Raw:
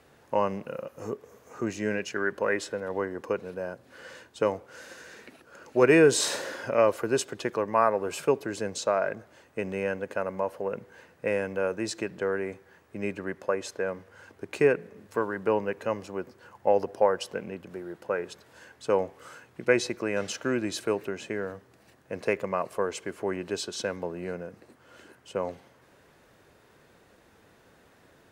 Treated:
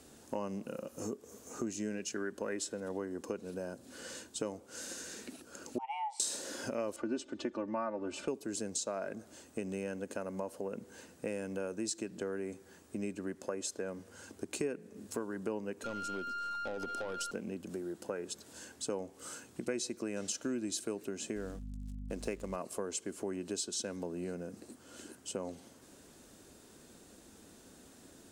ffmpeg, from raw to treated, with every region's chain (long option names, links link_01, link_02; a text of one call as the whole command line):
ffmpeg -i in.wav -filter_complex "[0:a]asettb=1/sr,asplit=3[link_01][link_02][link_03];[link_01]atrim=end=5.784[link_04];[link_02]atrim=start=5.78:end=6.2,asetpts=PTS-STARTPTS,afade=type=in:duration=0.004:curve=qsin,afade=type=out:start_time=0.416:duration=0.004:curve=qsin,bandreject=frequency=6300:width=7.6,afreqshift=410,asplit=3[link_05][link_06][link_07];[link_05]bandpass=frequency=300:width_type=q:width=8,volume=0dB[link_08];[link_06]bandpass=frequency=870:width_type=q:width=8,volume=-6dB[link_09];[link_07]bandpass=frequency=2240:width_type=q:width=8,volume=-9dB[link_10];[link_08][link_09][link_10]amix=inputs=3:normalize=0[link_11];[link_03]atrim=start=6.196[link_12];[link_04][link_11]acrossfade=duration=0.004:curve1=hsin:curve2=qsin[link_13];[link_13][link_12]acrossfade=duration=0.004:curve1=qsin:curve2=hsin,asettb=1/sr,asplit=3[link_14][link_15][link_16];[link_14]atrim=end=6.964[link_17];[link_15]atrim=start=6.96:end=8.28,asetpts=PTS-STARTPTS,afade=type=in:duration=0.004:curve=qsin,afade=type=out:start_time=1.316:duration=0.004:curve=qsin,lowpass=3000,aecho=1:1:3.4:0.82,atrim=end_sample=58212[link_18];[link_16]atrim=start=8.276[link_19];[link_17][link_18]acrossfade=duration=0.004:curve1=hsin:curve2=qsin[link_20];[link_20][link_19]acrossfade=duration=0.004:curve1=qsin:curve2=hsin,asettb=1/sr,asplit=3[link_21][link_22][link_23];[link_21]atrim=end=15.844[link_24];[link_22]atrim=start=15.84:end=17.31,asetpts=PTS-STARTPTS,afade=type=in:duration=0.004:curve=qsin,afade=type=out:start_time=1.466:duration=0.004:curve=qsin,aeval=exprs='val(0)+0.0398*sin(2*PI*1400*n/s)':channel_layout=same,acompressor=threshold=-26dB:ratio=3:attack=3.2:release=140:knee=1:detection=peak,aeval=exprs='(tanh(20*val(0)+0.2)-tanh(0.2))/20':channel_layout=same[link_25];[link_23]atrim=start=17.306[link_26];[link_24][link_25]acrossfade=duration=0.004:curve1=hsin:curve2=qsin[link_27];[link_27][link_26]acrossfade=duration=0.004:curve1=qsin:curve2=hsin,asettb=1/sr,asplit=3[link_28][link_29][link_30];[link_28]atrim=end=21.364[link_31];[link_29]atrim=start=21.36:end=22.56,asetpts=PTS-STARTPTS,afade=type=in:duration=0.004:curve=qsin,afade=type=out:start_time=1.196:duration=0.004:curve=qsin,aeval=exprs='sgn(val(0))*max(abs(val(0))-0.00224,0)':channel_layout=same,aeval=exprs='val(0)+0.00708*(sin(2*PI*50*n/s)+sin(2*PI*2*50*n/s)/2+sin(2*PI*3*50*n/s)/3+sin(2*PI*4*50*n/s)/4+sin(2*PI*5*50*n/s)/5)':channel_layout=same[link_32];[link_30]atrim=start=22.556[link_33];[link_31][link_32]acrossfade=duration=0.004:curve1=hsin:curve2=qsin[link_34];[link_34][link_33]acrossfade=duration=0.004:curve1=qsin:curve2=hsin,equalizer=frequency=125:width_type=o:width=1:gain=-8,equalizer=frequency=250:width_type=o:width=1:gain=6,equalizer=frequency=500:width_type=o:width=1:gain=-5,equalizer=frequency=1000:width_type=o:width=1:gain=-6,equalizer=frequency=2000:width_type=o:width=1:gain=-9,equalizer=frequency=8000:width_type=o:width=1:gain=10,acompressor=threshold=-41dB:ratio=3,volume=3.5dB" out.wav